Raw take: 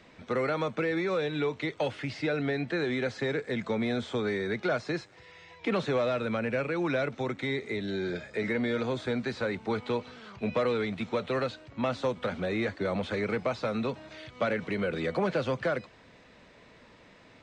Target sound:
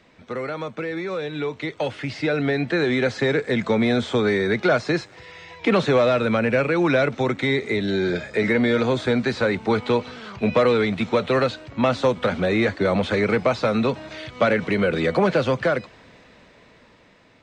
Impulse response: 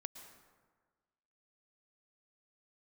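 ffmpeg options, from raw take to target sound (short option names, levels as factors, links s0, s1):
-af "dynaudnorm=f=610:g=7:m=3.16"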